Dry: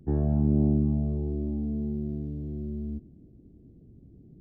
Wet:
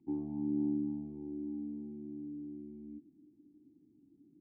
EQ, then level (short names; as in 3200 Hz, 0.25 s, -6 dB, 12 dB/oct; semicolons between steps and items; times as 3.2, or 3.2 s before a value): vowel filter u; low shelf 62 Hz -8.5 dB; 0.0 dB